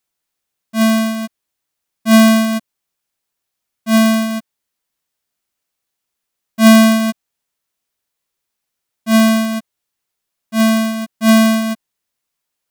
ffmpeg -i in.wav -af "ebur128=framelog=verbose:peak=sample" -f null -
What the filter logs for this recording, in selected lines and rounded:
Integrated loudness:
  I:         -13.5 LUFS
  Threshold: -24.5 LUFS
Loudness range:
  LRA:         5.2 LU
  Threshold: -37.3 LUFS
  LRA low:   -21.1 LUFS
  LRA high:  -15.9 LUFS
Sample peak:
  Peak:       -4.1 dBFS